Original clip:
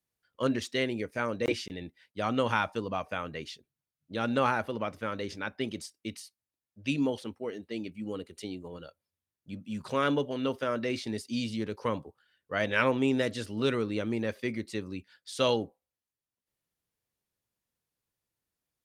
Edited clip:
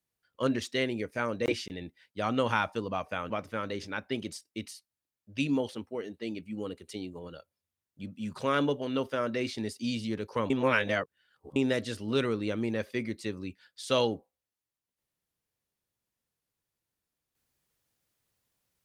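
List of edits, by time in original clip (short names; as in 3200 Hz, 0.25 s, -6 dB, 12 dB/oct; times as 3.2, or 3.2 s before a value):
3.3–4.79 cut
11.99–13.05 reverse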